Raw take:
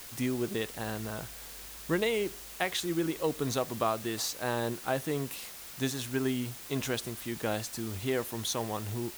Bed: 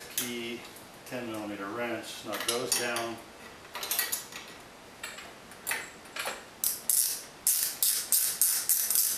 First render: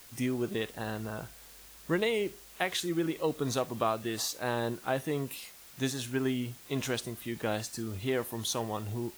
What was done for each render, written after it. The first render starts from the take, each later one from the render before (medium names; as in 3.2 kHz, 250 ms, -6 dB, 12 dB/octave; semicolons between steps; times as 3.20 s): noise print and reduce 7 dB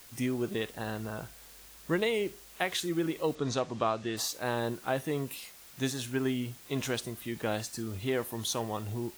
3.35–4.17 s: low-pass 7 kHz 24 dB/octave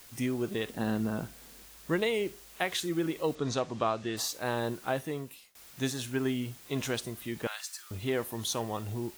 0.67–1.64 s: peaking EQ 230 Hz +10.5 dB 1.3 oct; 4.90–5.55 s: fade out linear, to -21.5 dB; 7.47–7.91 s: high-pass 1.1 kHz 24 dB/octave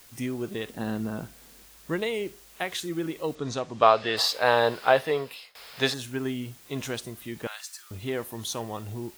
3.82–5.94 s: time-frequency box 400–5400 Hz +12 dB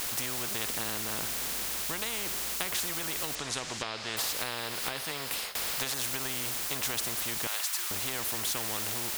compression 6:1, threshold -30 dBFS, peak gain reduction 16.5 dB; spectrum-flattening compressor 4:1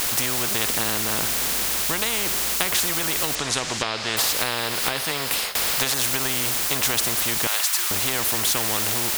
trim +10 dB